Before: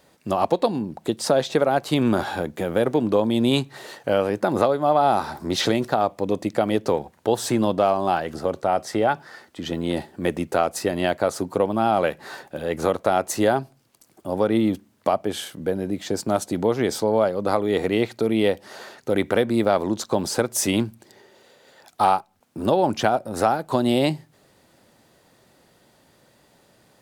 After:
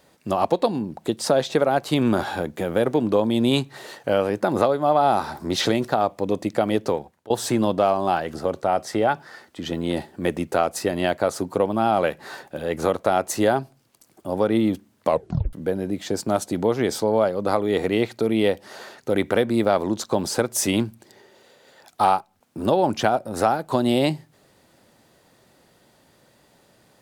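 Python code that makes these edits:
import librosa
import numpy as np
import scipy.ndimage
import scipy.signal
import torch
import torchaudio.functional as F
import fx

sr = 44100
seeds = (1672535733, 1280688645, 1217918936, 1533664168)

y = fx.edit(x, sr, fx.fade_out_to(start_s=6.83, length_s=0.47, floor_db=-22.5),
    fx.tape_stop(start_s=15.07, length_s=0.46), tone=tone)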